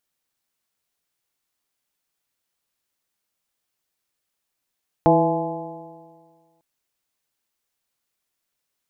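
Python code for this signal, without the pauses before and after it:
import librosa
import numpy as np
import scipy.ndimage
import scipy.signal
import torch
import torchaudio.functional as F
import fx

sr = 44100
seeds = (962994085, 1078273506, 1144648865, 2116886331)

y = fx.additive_stiff(sr, length_s=1.55, hz=162.0, level_db=-19.0, upper_db=(2.5, 1, 3, 3.0, -10.5), decay_s=1.73, stiffness=0.0036)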